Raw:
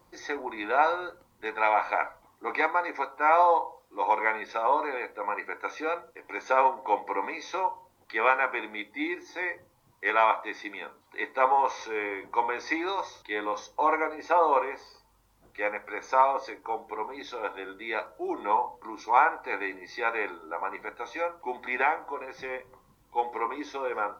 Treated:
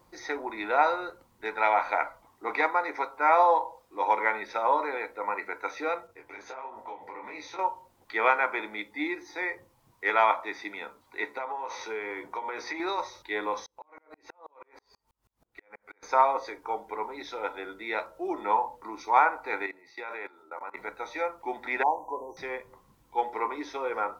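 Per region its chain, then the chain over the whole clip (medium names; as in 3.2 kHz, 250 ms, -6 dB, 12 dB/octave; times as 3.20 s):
6.07–7.59 s: peaking EQ 100 Hz +10 dB 0.93 oct + compression 16:1, threshold -32 dBFS + detune thickener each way 52 cents
11.26–12.80 s: high-pass 60 Hz + compression 12:1, threshold -30 dBFS + doubling 14 ms -12 dB
13.66–16.03 s: compression 10:1, threshold -37 dBFS + sawtooth tremolo in dB swelling 6.2 Hz, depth 38 dB
19.66–20.77 s: high-pass 220 Hz 6 dB/octave + level held to a coarse grid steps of 19 dB
21.83–22.37 s: brick-wall FIR band-stop 1.1–5.7 kHz + dynamic bell 2.2 kHz, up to +6 dB, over -42 dBFS, Q 0.74
whole clip: none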